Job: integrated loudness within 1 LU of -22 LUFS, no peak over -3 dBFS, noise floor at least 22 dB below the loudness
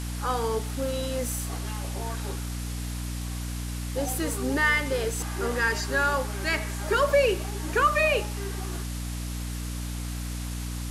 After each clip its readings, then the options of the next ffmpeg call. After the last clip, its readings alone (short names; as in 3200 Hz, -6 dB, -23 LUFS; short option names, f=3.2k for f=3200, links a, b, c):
hum 60 Hz; harmonics up to 300 Hz; hum level -30 dBFS; noise floor -33 dBFS; noise floor target -50 dBFS; loudness -28.0 LUFS; peak -11.0 dBFS; loudness target -22.0 LUFS
-> -af "bandreject=f=60:t=h:w=4,bandreject=f=120:t=h:w=4,bandreject=f=180:t=h:w=4,bandreject=f=240:t=h:w=4,bandreject=f=300:t=h:w=4"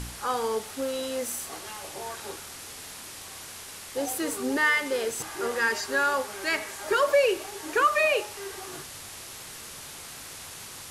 hum none; noise floor -43 dBFS; noise floor target -50 dBFS
-> -af "afftdn=nr=7:nf=-43"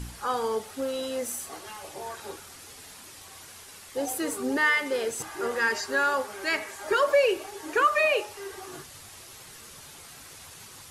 noise floor -47 dBFS; noise floor target -49 dBFS
-> -af "afftdn=nr=6:nf=-47"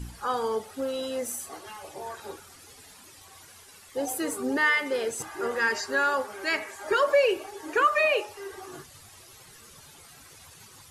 noise floor -51 dBFS; loudness -27.0 LUFS; peak -12.5 dBFS; loudness target -22.0 LUFS
-> -af "volume=5dB"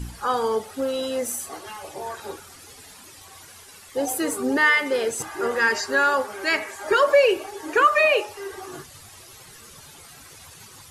loudness -22.0 LUFS; peak -7.5 dBFS; noise floor -46 dBFS